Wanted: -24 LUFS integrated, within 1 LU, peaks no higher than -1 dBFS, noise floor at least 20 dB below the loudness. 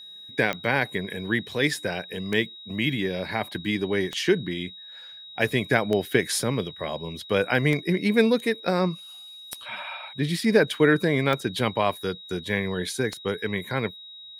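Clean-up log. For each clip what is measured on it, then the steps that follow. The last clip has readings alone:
clicks 8; steady tone 3800 Hz; tone level -41 dBFS; loudness -25.5 LUFS; peak -5.0 dBFS; loudness target -24.0 LUFS
-> de-click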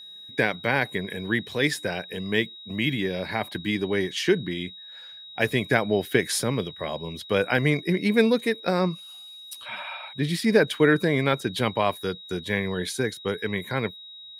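clicks 0; steady tone 3800 Hz; tone level -41 dBFS
-> notch 3800 Hz, Q 30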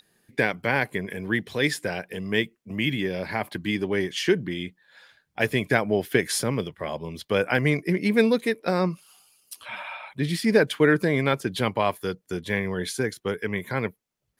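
steady tone none; loudness -25.5 LUFS; peak -5.0 dBFS; loudness target -24.0 LUFS
-> gain +1.5 dB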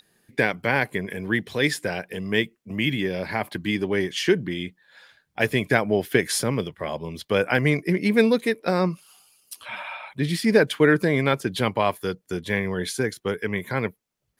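loudness -24.0 LUFS; peak -3.5 dBFS; noise floor -71 dBFS

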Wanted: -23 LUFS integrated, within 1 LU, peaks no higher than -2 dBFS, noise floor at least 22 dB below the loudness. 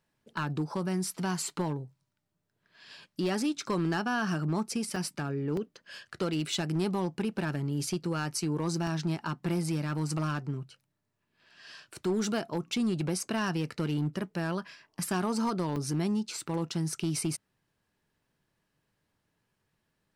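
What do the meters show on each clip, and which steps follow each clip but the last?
clipped 1.3%; flat tops at -23.5 dBFS; dropouts 5; longest dropout 2.4 ms; loudness -32.0 LUFS; peak -23.5 dBFS; loudness target -23.0 LUFS
-> clip repair -23.5 dBFS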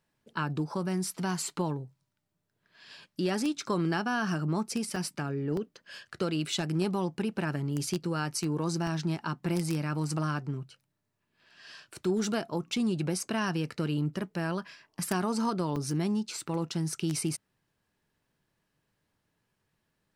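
clipped 0.0%; dropouts 5; longest dropout 2.4 ms
-> interpolate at 4.96/5.57/8.87/15.76/16.54, 2.4 ms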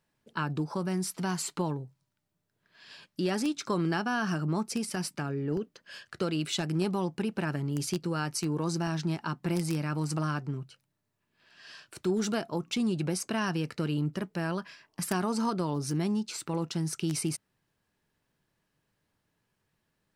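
dropouts 0; loudness -32.0 LUFS; peak -14.5 dBFS; loudness target -23.0 LUFS
-> gain +9 dB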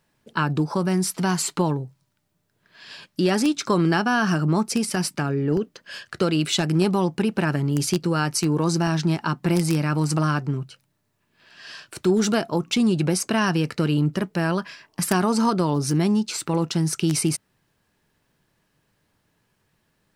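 loudness -23.0 LUFS; peak -5.5 dBFS; noise floor -71 dBFS

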